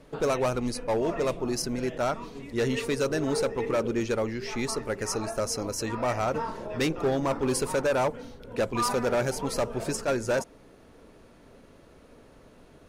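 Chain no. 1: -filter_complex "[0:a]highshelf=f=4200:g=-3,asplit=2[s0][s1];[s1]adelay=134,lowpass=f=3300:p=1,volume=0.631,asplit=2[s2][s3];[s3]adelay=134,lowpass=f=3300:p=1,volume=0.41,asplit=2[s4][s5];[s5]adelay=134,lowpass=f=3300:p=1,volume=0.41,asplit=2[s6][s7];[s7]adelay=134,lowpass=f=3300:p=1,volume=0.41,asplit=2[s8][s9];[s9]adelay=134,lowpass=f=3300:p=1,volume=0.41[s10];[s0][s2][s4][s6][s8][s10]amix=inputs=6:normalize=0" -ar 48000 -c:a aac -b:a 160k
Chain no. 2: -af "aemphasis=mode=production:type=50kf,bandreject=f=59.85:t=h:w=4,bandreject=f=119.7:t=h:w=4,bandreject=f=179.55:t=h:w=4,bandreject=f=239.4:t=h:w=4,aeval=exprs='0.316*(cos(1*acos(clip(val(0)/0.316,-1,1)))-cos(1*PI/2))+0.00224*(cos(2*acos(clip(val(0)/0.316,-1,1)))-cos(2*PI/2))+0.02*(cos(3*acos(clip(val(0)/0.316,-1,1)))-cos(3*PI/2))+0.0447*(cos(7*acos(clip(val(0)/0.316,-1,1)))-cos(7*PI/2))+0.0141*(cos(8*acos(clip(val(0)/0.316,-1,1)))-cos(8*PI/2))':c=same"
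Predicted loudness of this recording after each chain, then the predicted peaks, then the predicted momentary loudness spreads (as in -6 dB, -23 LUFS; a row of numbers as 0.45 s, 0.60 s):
-27.5 LUFS, -33.0 LUFS; -14.5 dBFS, -9.5 dBFS; 5 LU, 10 LU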